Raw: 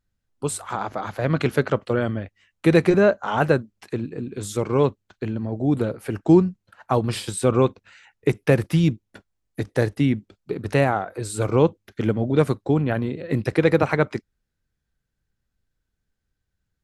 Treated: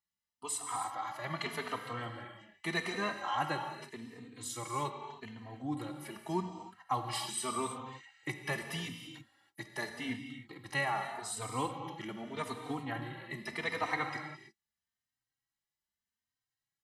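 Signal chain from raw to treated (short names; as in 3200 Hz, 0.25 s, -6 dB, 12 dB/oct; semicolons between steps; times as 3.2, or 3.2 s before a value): HPF 1100 Hz 6 dB/oct; comb 1 ms, depth 68%; non-linear reverb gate 0.35 s flat, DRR 5 dB; endless flanger 3.1 ms +0.83 Hz; gain -5 dB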